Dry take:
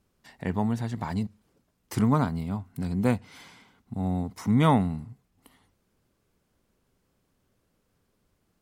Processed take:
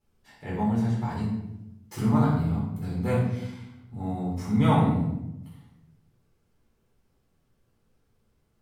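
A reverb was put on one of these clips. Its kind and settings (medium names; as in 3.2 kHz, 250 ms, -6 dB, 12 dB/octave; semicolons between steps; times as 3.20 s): simulated room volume 290 m³, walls mixed, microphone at 4.1 m; trim -12 dB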